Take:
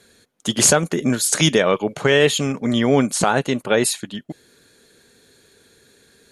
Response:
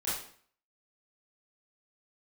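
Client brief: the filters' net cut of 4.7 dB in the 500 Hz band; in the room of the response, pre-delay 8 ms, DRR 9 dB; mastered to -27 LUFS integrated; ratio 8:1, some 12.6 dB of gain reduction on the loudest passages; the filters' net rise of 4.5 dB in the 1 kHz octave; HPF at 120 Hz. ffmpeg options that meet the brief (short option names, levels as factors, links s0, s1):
-filter_complex "[0:a]highpass=120,equalizer=f=500:t=o:g=-8,equalizer=f=1000:t=o:g=9,acompressor=threshold=0.0708:ratio=8,asplit=2[s0][s1];[1:a]atrim=start_sample=2205,adelay=8[s2];[s1][s2]afir=irnorm=-1:irlink=0,volume=0.188[s3];[s0][s3]amix=inputs=2:normalize=0"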